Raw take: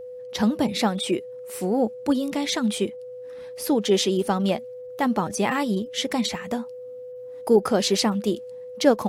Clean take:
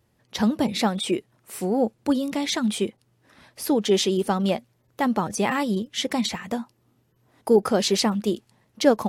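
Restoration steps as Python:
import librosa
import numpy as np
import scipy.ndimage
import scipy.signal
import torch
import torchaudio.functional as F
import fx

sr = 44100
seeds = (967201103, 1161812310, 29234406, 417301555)

y = fx.notch(x, sr, hz=500.0, q=30.0)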